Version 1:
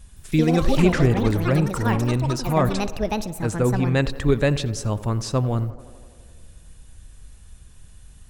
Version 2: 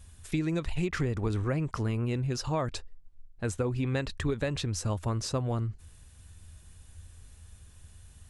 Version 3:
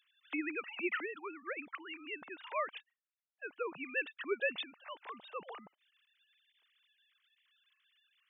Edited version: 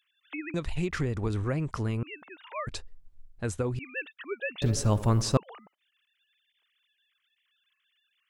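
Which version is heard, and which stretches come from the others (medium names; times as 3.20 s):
3
0.54–2.03 s: from 2
2.67–3.79 s: from 2
4.62–5.37 s: from 1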